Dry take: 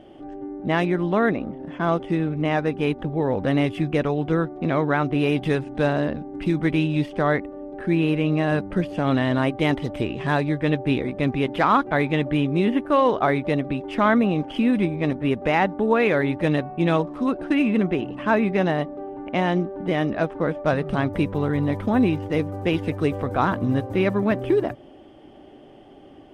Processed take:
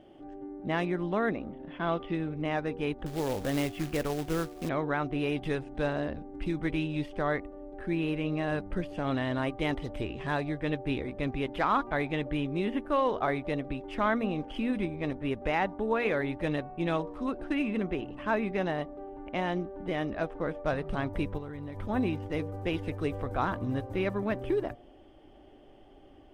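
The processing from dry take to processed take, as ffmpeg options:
-filter_complex "[0:a]asettb=1/sr,asplit=3[s0][s1][s2];[s0]atrim=end=1.524[s3];[s1]atrim=start=1.52:end=2.15,asetpts=PTS-STARTPTS,afade=t=in:d=0.004:c=qsin,afade=t=out:st=0.626:d=0.004:c=qsin,lowpass=f=3500:t=q:w=1.8[s4];[s2]atrim=start=2.146[s5];[s3][s4]acrossfade=d=0.004:c1=hsin:c2=qsin[s6];[s6][s5]acrossfade=d=0.004:c1=qsin:c2=hsin,asettb=1/sr,asplit=3[s7][s8][s9];[s7]atrim=end=3.064[s10];[s8]atrim=start=3.06:end=4.69,asetpts=PTS-STARTPTS,afade=t=in:d=0.004:c=qsin,afade=t=out:st=1.626:d=0.004:c=qsin,acrusher=bits=3:mode=log:mix=0:aa=0.000001[s11];[s9]atrim=start=4.686[s12];[s10][s11]acrossfade=d=0.004:c1=hsin:c2=qsin[s13];[s13][s12]acrossfade=d=0.004:c1=qsin:c2=hsin,asplit=3[s14][s15][s16];[s14]afade=t=out:st=21.37:d=0.02[s17];[s15]acompressor=threshold=0.0501:ratio=6:attack=3.2:release=140:knee=1:detection=peak,afade=t=in:st=21.37:d=0.02,afade=t=out:st=21.88:d=0.02[s18];[s16]afade=t=in:st=21.88:d=0.02[s19];[s17][s18][s19]amix=inputs=3:normalize=0,bandreject=f=237.3:t=h:w=4,bandreject=f=474.6:t=h:w=4,bandreject=f=711.9:t=h:w=4,bandreject=f=949.2:t=h:w=4,bandreject=f=1186.5:t=h:w=4,asubboost=boost=5:cutoff=62,volume=0.398"

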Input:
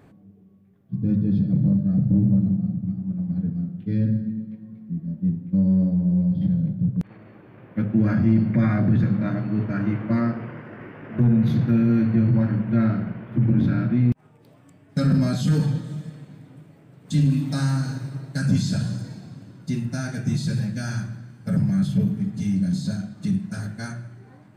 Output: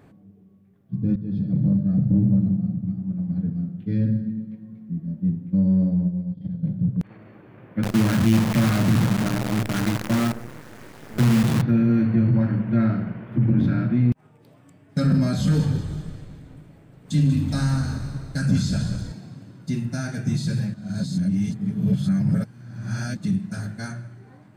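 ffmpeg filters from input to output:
-filter_complex "[0:a]asplit=3[s0][s1][s2];[s0]afade=t=out:st=6.07:d=0.02[s3];[s1]agate=range=0.0224:threshold=0.2:ratio=3:release=100:detection=peak,afade=t=in:st=6.07:d=0.02,afade=t=out:st=6.62:d=0.02[s4];[s2]afade=t=in:st=6.62:d=0.02[s5];[s3][s4][s5]amix=inputs=3:normalize=0,asettb=1/sr,asplit=3[s6][s7][s8];[s6]atrim=end=7.834[s9];[s7]atrim=start=7.83:end=11.62,asetpts=PTS-STARTPTS,afade=t=in:d=0.004:c=qsin,afade=t=out:st=3.786:d=0.004:c=qsin,acrusher=bits=5:dc=4:mix=0:aa=0.000001[s10];[s8]atrim=start=11.616[s11];[s9][s10]acrossfade=d=0.004:c1=hsin:c2=qsin[s12];[s12][s11]acrossfade=d=0.004:c1=qsin:c2=hsin,asettb=1/sr,asplit=3[s13][s14][s15];[s13]atrim=end=15.184[s16];[s14]atrim=start=15.18:end=19.12,asetpts=PTS-STARTPTS,afade=t=in:d=0.004:c=qsin,afade=t=out:st=3.936:d=0.004:c=qsin,asplit=6[s17][s18][s19][s20][s21][s22];[s18]adelay=189,afreqshift=-54,volume=0.282[s23];[s19]adelay=378,afreqshift=-108,volume=0.132[s24];[s20]adelay=567,afreqshift=-162,volume=0.0624[s25];[s21]adelay=756,afreqshift=-216,volume=0.0292[s26];[s22]adelay=945,afreqshift=-270,volume=0.0138[s27];[s17][s23][s24][s25][s26][s27]amix=inputs=6:normalize=0,atrim=end_sample=173754[s28];[s15]atrim=start=19.116[s29];[s16][s28]acrossfade=d=0.004:c1=hsin:c2=qsin[s30];[s30][s29]acrossfade=d=0.004:c1=qsin:c2=hsin,asplit=4[s31][s32][s33][s34];[s31]atrim=end=1.16,asetpts=PTS-STARTPTS,afade=t=out:st=1.156:d=0.004:c=hsin:silence=0.223872[s35];[s32]atrim=start=1.16:end=20.742,asetpts=PTS-STARTPTS,afade=t=in:d=0.68:c=qsin:silence=0.223872[s36];[s33]atrim=start=20.738:end=23.172,asetpts=PTS-STARTPTS,areverse[s37];[s34]atrim=start=23.168[s38];[s35][s36]concat=n=2:v=0:a=1[s39];[s39][s37]acrossfade=d=0.004:c1=hsin:c2=hsin[s40];[s40][s38]acrossfade=d=0.004:c1=hsin:c2=hsin"

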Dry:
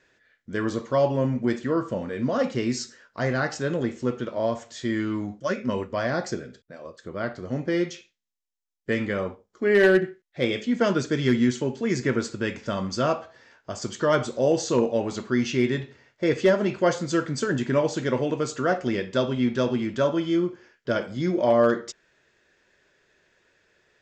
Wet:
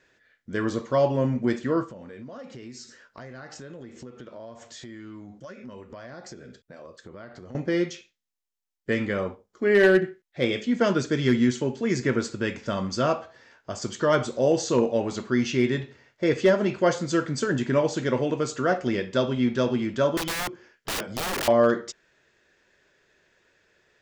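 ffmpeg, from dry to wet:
-filter_complex "[0:a]asettb=1/sr,asplit=3[s0][s1][s2];[s0]atrim=end=1.844[s3];[s1]atrim=start=1.84:end=7.55,asetpts=PTS-STARTPTS,afade=t=in:d=0.004:c=qsin,afade=t=out:st=5.706:d=0.004:c=qsin,acompressor=threshold=0.0112:ratio=6:attack=3.2:release=140:knee=1:detection=peak[s4];[s2]atrim=start=7.546[s5];[s3][s4]acrossfade=d=0.004:c1=hsin:c2=qsin[s6];[s6][s5]acrossfade=d=0.004:c1=qsin:c2=hsin,asettb=1/sr,asplit=3[s7][s8][s9];[s7]atrim=end=20.174[s10];[s8]atrim=start=20.17:end=21.48,asetpts=PTS-STARTPTS,afade=t=in:d=0.004:c=qsin,afade=t=out:st=1.306:d=0.004:c=qsin,aeval=exprs='(mod(15.8*val(0)+1,2)-1)/15.8':c=same[s11];[s9]atrim=start=21.476[s12];[s10][s11]acrossfade=d=0.004:c1=hsin:c2=qsin[s13];[s13][s12]acrossfade=d=0.004:c1=qsin:c2=hsin"

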